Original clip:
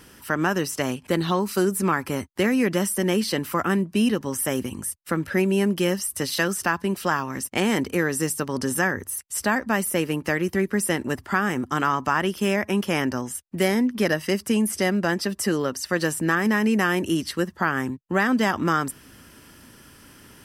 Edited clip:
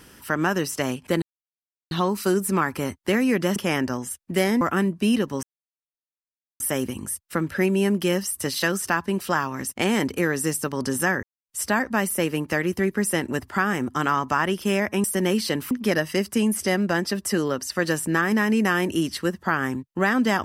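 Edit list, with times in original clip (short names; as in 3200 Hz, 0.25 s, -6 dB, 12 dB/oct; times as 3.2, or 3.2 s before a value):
1.22 insert silence 0.69 s
2.87–3.54 swap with 12.8–13.85
4.36 insert silence 1.17 s
8.99–9.25 mute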